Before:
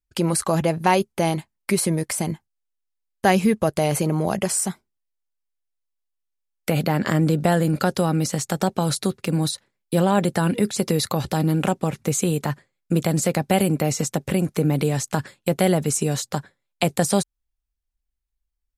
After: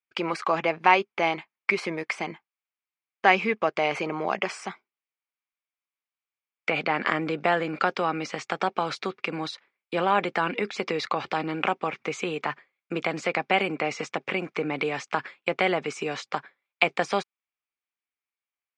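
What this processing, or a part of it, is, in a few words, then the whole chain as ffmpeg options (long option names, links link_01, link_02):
phone earpiece: -af "highpass=450,equalizer=frequency=570:width_type=q:width=4:gain=-5,equalizer=frequency=1200:width_type=q:width=4:gain=5,equalizer=frequency=2300:width_type=q:width=4:gain=9,equalizer=frequency=4100:width_type=q:width=4:gain=-7,lowpass=frequency=4400:width=0.5412,lowpass=frequency=4400:width=1.3066"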